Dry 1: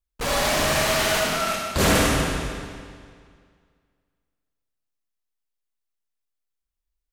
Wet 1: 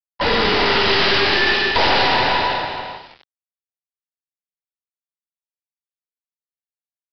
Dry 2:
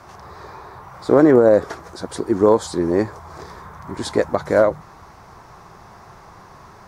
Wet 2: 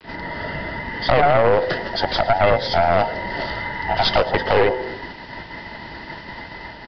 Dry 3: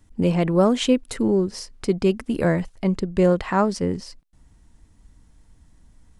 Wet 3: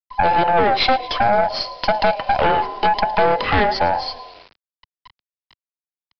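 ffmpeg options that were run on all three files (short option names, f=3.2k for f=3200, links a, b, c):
-filter_complex "[0:a]afftfilt=real='real(if(between(b,1,1008),(2*floor((b-1)/48)+1)*48-b,b),0)':imag='imag(if(between(b,1,1008),(2*floor((b-1)/48)+1)*48-b,b),0)*if(between(b,1,1008),-1,1)':win_size=2048:overlap=0.75,agate=range=-14dB:threshold=-43dB:ratio=16:detection=peak,bandreject=f=127.4:t=h:w=4,bandreject=f=254.8:t=h:w=4,bandreject=f=382.2:t=h:w=4,bandreject=f=509.6:t=h:w=4,bandreject=f=637:t=h:w=4,bandreject=f=764.4:t=h:w=4,bandreject=f=891.8:t=h:w=4,bandreject=f=1.0192k:t=h:w=4,bandreject=f=1.1466k:t=h:w=4,bandreject=f=1.274k:t=h:w=4,bandreject=f=1.4014k:t=h:w=4,bandreject=f=1.5288k:t=h:w=4,bandreject=f=1.6562k:t=h:w=4,bandreject=f=1.7836k:t=h:w=4,bandreject=f=1.911k:t=h:w=4,bandreject=f=2.0384k:t=h:w=4,bandreject=f=2.1658k:t=h:w=4,bandreject=f=2.2932k:t=h:w=4,bandreject=f=2.4206k:t=h:w=4,bandreject=f=2.548k:t=h:w=4,bandreject=f=2.6754k:t=h:w=4,bandreject=f=2.8028k:t=h:w=4,bandreject=f=2.9302k:t=h:w=4,bandreject=f=3.0576k:t=h:w=4,bandreject=f=3.185k:t=h:w=4,acompressor=threshold=-22dB:ratio=4,asplit=2[a][b];[b]asplit=5[c][d][e][f][g];[c]adelay=110,afreqshift=-34,volume=-19dB[h];[d]adelay=220,afreqshift=-68,volume=-23.3dB[i];[e]adelay=330,afreqshift=-102,volume=-27.6dB[j];[f]adelay=440,afreqshift=-136,volume=-31.9dB[k];[g]adelay=550,afreqshift=-170,volume=-36.2dB[l];[h][i][j][k][l]amix=inputs=5:normalize=0[m];[a][m]amix=inputs=2:normalize=0,acrusher=bits=8:mix=0:aa=0.000001,acrossover=split=120|2200[n][o][p];[p]dynaudnorm=f=120:g=13:m=5.5dB[q];[n][o][q]amix=inputs=3:normalize=0,aeval=exprs='0.335*(cos(1*acos(clip(val(0)/0.335,-1,1)))-cos(1*PI/2))+0.168*(cos(4*acos(clip(val(0)/0.335,-1,1)))-cos(4*PI/2))+0.15*(cos(5*acos(clip(val(0)/0.335,-1,1)))-cos(5*PI/2))':c=same,aresample=11025,aresample=44100"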